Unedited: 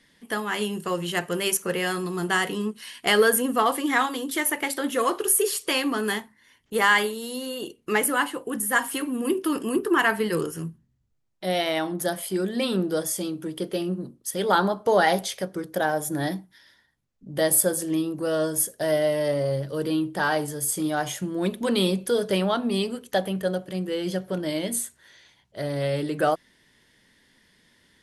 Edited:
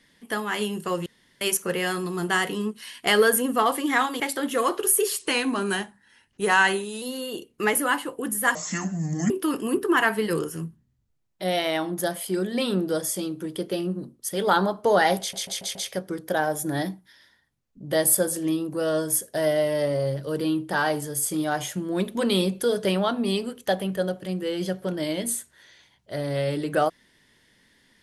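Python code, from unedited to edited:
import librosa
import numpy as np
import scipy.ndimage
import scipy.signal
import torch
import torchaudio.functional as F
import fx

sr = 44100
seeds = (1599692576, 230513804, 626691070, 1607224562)

y = fx.edit(x, sr, fx.room_tone_fill(start_s=1.06, length_s=0.35),
    fx.cut(start_s=4.2, length_s=0.41),
    fx.speed_span(start_s=5.6, length_s=1.7, speed=0.93),
    fx.speed_span(start_s=8.83, length_s=0.49, speed=0.65),
    fx.stutter(start_s=15.21, slice_s=0.14, count=5), tone=tone)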